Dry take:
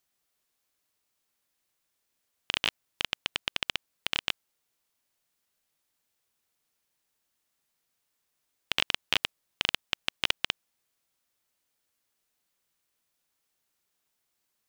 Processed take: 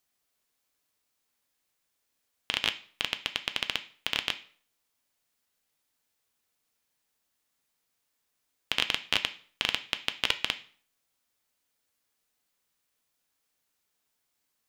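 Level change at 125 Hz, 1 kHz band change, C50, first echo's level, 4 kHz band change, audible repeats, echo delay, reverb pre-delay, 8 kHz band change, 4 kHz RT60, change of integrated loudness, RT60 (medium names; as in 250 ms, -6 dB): 0.0 dB, +0.5 dB, 15.5 dB, no echo, +0.5 dB, no echo, no echo, 3 ms, +0.5 dB, 0.40 s, +0.5 dB, 0.50 s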